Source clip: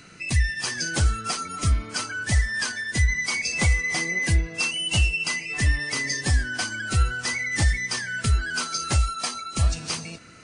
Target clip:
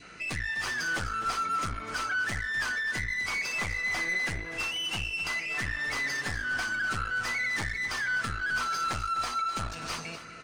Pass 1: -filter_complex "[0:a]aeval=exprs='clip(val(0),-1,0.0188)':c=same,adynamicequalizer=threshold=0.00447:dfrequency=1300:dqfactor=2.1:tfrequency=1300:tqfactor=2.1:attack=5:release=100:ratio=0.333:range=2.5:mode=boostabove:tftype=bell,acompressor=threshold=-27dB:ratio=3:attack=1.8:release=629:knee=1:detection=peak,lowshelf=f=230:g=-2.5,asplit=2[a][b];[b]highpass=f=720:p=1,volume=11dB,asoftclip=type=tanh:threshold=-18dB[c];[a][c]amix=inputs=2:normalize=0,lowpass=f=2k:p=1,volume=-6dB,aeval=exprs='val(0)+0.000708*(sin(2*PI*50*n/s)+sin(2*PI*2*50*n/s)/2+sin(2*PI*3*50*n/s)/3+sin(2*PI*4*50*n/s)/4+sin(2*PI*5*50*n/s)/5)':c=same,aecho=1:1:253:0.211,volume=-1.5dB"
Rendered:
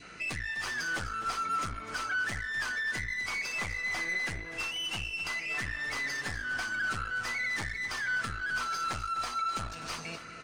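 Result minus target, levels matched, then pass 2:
compressor: peak gain reduction +4 dB
-filter_complex "[0:a]aeval=exprs='clip(val(0),-1,0.0188)':c=same,adynamicequalizer=threshold=0.00447:dfrequency=1300:dqfactor=2.1:tfrequency=1300:tqfactor=2.1:attack=5:release=100:ratio=0.333:range=2.5:mode=boostabove:tftype=bell,acompressor=threshold=-21dB:ratio=3:attack=1.8:release=629:knee=1:detection=peak,lowshelf=f=230:g=-2.5,asplit=2[a][b];[b]highpass=f=720:p=1,volume=11dB,asoftclip=type=tanh:threshold=-18dB[c];[a][c]amix=inputs=2:normalize=0,lowpass=f=2k:p=1,volume=-6dB,aeval=exprs='val(0)+0.000708*(sin(2*PI*50*n/s)+sin(2*PI*2*50*n/s)/2+sin(2*PI*3*50*n/s)/3+sin(2*PI*4*50*n/s)/4+sin(2*PI*5*50*n/s)/5)':c=same,aecho=1:1:253:0.211,volume=-1.5dB"

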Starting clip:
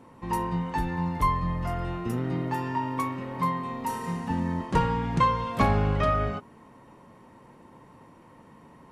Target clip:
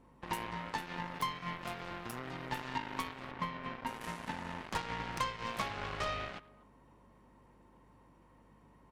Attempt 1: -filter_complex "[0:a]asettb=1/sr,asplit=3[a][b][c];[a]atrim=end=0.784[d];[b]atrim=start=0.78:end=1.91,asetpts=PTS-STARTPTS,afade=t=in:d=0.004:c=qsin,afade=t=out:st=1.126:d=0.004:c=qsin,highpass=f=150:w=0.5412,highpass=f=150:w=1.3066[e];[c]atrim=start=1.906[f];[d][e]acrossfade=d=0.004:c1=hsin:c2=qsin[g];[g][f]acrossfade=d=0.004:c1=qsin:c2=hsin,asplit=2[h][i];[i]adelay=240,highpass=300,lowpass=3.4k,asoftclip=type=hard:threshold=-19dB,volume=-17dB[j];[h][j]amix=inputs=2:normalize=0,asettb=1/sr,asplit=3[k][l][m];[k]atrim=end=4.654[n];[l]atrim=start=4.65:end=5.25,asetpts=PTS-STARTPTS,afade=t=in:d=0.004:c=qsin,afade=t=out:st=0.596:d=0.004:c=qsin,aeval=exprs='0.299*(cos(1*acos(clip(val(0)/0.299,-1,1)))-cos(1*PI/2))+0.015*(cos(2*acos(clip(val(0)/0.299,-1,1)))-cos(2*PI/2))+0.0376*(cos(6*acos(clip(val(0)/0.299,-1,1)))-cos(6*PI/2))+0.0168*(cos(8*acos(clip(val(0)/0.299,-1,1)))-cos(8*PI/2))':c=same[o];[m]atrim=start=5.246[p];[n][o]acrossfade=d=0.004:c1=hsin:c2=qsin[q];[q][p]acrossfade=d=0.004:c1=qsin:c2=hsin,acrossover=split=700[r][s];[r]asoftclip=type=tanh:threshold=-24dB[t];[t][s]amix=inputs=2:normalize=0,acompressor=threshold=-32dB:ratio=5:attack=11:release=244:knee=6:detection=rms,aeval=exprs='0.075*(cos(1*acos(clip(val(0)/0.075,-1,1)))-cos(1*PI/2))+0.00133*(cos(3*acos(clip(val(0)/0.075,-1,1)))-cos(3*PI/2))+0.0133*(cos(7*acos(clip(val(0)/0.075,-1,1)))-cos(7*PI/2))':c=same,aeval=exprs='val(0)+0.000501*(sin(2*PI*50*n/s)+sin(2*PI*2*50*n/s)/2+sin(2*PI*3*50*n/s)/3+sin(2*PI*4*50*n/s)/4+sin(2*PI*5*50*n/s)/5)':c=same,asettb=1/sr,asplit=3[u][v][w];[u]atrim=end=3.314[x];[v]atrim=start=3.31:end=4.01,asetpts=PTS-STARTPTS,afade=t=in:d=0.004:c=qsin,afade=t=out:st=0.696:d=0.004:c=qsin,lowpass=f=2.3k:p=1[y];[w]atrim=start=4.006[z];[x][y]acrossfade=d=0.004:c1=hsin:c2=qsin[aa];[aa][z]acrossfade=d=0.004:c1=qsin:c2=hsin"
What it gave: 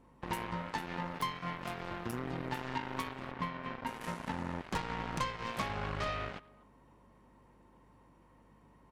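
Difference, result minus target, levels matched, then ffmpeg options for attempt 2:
soft clip: distortion -6 dB
-filter_complex "[0:a]asettb=1/sr,asplit=3[a][b][c];[a]atrim=end=0.784[d];[b]atrim=start=0.78:end=1.91,asetpts=PTS-STARTPTS,afade=t=in:d=0.004:c=qsin,afade=t=out:st=1.126:d=0.004:c=qsin,highpass=f=150:w=0.5412,highpass=f=150:w=1.3066[e];[c]atrim=start=1.906[f];[d][e]acrossfade=d=0.004:c1=hsin:c2=qsin[g];[g][f]acrossfade=d=0.004:c1=qsin:c2=hsin,asplit=2[h][i];[i]adelay=240,highpass=300,lowpass=3.4k,asoftclip=type=hard:threshold=-19dB,volume=-17dB[j];[h][j]amix=inputs=2:normalize=0,asettb=1/sr,asplit=3[k][l][m];[k]atrim=end=4.654[n];[l]atrim=start=4.65:end=5.25,asetpts=PTS-STARTPTS,afade=t=in:d=0.004:c=qsin,afade=t=out:st=0.596:d=0.004:c=qsin,aeval=exprs='0.299*(cos(1*acos(clip(val(0)/0.299,-1,1)))-cos(1*PI/2))+0.015*(cos(2*acos(clip(val(0)/0.299,-1,1)))-cos(2*PI/2))+0.0376*(cos(6*acos(clip(val(0)/0.299,-1,1)))-cos(6*PI/2))+0.0168*(cos(8*acos(clip(val(0)/0.299,-1,1)))-cos(8*PI/2))':c=same[o];[m]atrim=start=5.246[p];[n][o]acrossfade=d=0.004:c1=hsin:c2=qsin[q];[q][p]acrossfade=d=0.004:c1=qsin:c2=hsin,acrossover=split=700[r][s];[r]asoftclip=type=tanh:threshold=-31.5dB[t];[t][s]amix=inputs=2:normalize=0,acompressor=threshold=-32dB:ratio=5:attack=11:release=244:knee=6:detection=rms,aeval=exprs='0.075*(cos(1*acos(clip(val(0)/0.075,-1,1)))-cos(1*PI/2))+0.00133*(cos(3*acos(clip(val(0)/0.075,-1,1)))-cos(3*PI/2))+0.0133*(cos(7*acos(clip(val(0)/0.075,-1,1)))-cos(7*PI/2))':c=same,aeval=exprs='val(0)+0.000501*(sin(2*PI*50*n/s)+sin(2*PI*2*50*n/s)/2+sin(2*PI*3*50*n/s)/3+sin(2*PI*4*50*n/s)/4+sin(2*PI*5*50*n/s)/5)':c=same,asettb=1/sr,asplit=3[u][v][w];[u]atrim=end=3.314[x];[v]atrim=start=3.31:end=4.01,asetpts=PTS-STARTPTS,afade=t=in:d=0.004:c=qsin,afade=t=out:st=0.696:d=0.004:c=qsin,lowpass=f=2.3k:p=1[y];[w]atrim=start=4.006[z];[x][y]acrossfade=d=0.004:c1=hsin:c2=qsin[aa];[aa][z]acrossfade=d=0.004:c1=qsin:c2=hsin"

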